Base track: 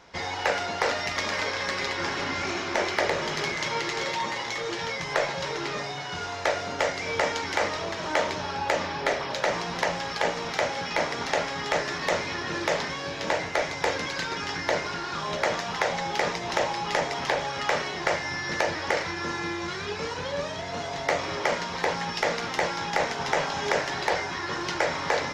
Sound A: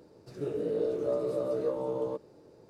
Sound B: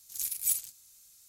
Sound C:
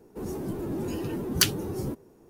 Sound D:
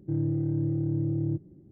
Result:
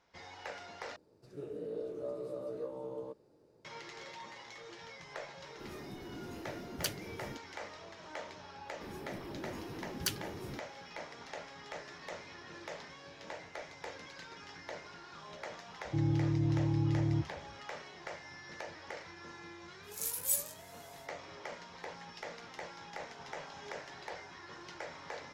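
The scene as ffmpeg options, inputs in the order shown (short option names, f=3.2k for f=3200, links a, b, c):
-filter_complex "[3:a]asplit=2[a][b];[0:a]volume=-19dB[c];[4:a]equalizer=f=69:t=o:w=0.77:g=14.5[d];[2:a]flanger=delay=15.5:depth=5.6:speed=2[e];[c]asplit=2[f][g];[f]atrim=end=0.964[h];[1:a]atrim=end=2.69,asetpts=PTS-STARTPTS,volume=-10dB[i];[g]atrim=start=3.646[j];[a]atrim=end=2.29,asetpts=PTS-STARTPTS,volume=-14.5dB,afade=t=in:d=0.004:c=hsin,afade=t=out:st=2.286:d=0.004:c=hsin,adelay=5430[k];[b]atrim=end=2.29,asetpts=PTS-STARTPTS,volume=-13dB,afade=t=in:d=0.004:c=hsin,afade=t=out:st=2.286:d=0.004:c=hsin,adelay=8650[l];[d]atrim=end=1.71,asetpts=PTS-STARTPTS,volume=-5dB,afade=t=in:d=0.004:c=hsin,afade=t=out:st=1.706:d=0.004:c=hsin,adelay=15850[m];[e]atrim=end=1.28,asetpts=PTS-STARTPTS,afade=t=in:d=0.1,afade=t=out:st=1.18:d=0.1,adelay=19820[n];[h][i]acrossfade=d=0.004:c1=hsin:c2=hsin[o];[o][j]acrossfade=d=0.004:c1=hsin:c2=hsin[p];[p][k][l][m][n]amix=inputs=5:normalize=0"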